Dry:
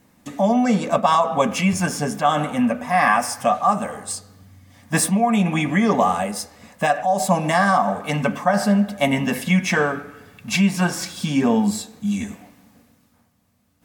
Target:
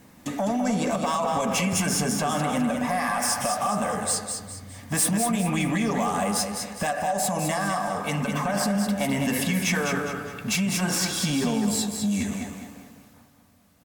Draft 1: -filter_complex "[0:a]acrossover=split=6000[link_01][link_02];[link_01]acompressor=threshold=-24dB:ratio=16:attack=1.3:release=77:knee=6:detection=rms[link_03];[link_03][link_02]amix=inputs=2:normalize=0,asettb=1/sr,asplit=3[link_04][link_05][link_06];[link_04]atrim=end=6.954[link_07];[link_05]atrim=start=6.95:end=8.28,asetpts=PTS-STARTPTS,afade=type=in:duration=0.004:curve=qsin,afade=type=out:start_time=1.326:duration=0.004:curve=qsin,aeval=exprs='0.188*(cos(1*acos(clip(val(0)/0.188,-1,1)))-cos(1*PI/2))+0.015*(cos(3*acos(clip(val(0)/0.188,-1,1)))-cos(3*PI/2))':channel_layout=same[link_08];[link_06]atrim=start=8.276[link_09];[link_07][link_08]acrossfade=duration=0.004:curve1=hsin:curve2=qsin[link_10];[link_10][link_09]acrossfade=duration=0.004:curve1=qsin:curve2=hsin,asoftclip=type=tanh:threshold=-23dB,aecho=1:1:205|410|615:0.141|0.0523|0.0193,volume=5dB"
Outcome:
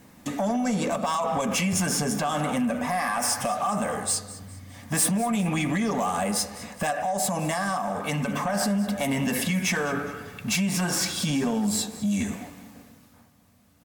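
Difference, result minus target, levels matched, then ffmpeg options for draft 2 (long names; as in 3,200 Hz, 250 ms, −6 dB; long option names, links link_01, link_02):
echo-to-direct −11 dB
-filter_complex "[0:a]acrossover=split=6000[link_01][link_02];[link_01]acompressor=threshold=-24dB:ratio=16:attack=1.3:release=77:knee=6:detection=rms[link_03];[link_03][link_02]amix=inputs=2:normalize=0,asettb=1/sr,asplit=3[link_04][link_05][link_06];[link_04]atrim=end=6.954[link_07];[link_05]atrim=start=6.95:end=8.28,asetpts=PTS-STARTPTS,afade=type=in:duration=0.004:curve=qsin,afade=type=out:start_time=1.326:duration=0.004:curve=qsin,aeval=exprs='0.188*(cos(1*acos(clip(val(0)/0.188,-1,1)))-cos(1*PI/2))+0.015*(cos(3*acos(clip(val(0)/0.188,-1,1)))-cos(3*PI/2))':channel_layout=same[link_08];[link_06]atrim=start=8.276[link_09];[link_07][link_08]acrossfade=duration=0.004:curve1=hsin:curve2=qsin[link_10];[link_10][link_09]acrossfade=duration=0.004:curve1=qsin:curve2=hsin,asoftclip=type=tanh:threshold=-23dB,aecho=1:1:205|410|615|820:0.501|0.185|0.0686|0.0254,volume=5dB"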